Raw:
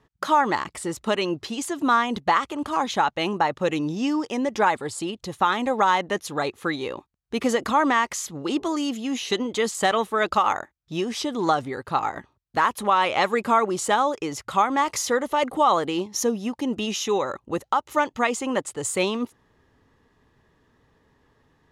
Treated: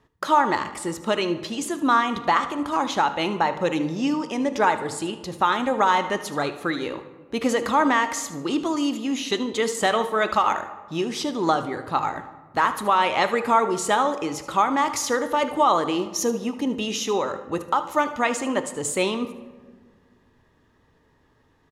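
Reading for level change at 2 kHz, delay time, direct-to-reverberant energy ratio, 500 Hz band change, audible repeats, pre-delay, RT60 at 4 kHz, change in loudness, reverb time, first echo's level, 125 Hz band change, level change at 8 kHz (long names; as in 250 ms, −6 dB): +0.5 dB, 76 ms, 9.0 dB, +0.5 dB, 1, 3 ms, 0.80 s, +0.5 dB, 1.6 s, −15.5 dB, +0.5 dB, +0.5 dB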